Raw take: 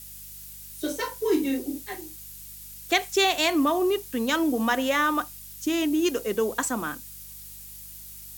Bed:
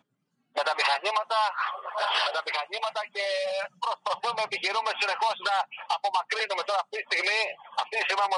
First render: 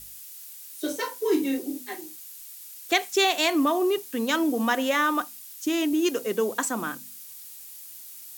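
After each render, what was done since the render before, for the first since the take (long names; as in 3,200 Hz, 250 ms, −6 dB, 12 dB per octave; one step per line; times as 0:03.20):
hum removal 50 Hz, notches 5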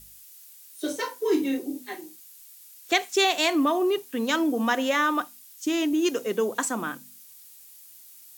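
noise reduction from a noise print 6 dB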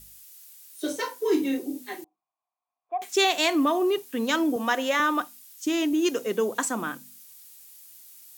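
0:02.04–0:03.02: formant resonators in series a
0:04.56–0:05.00: high-pass filter 290 Hz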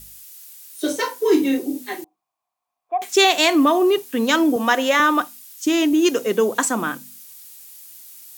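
level +7 dB
brickwall limiter −2 dBFS, peak gain reduction 1 dB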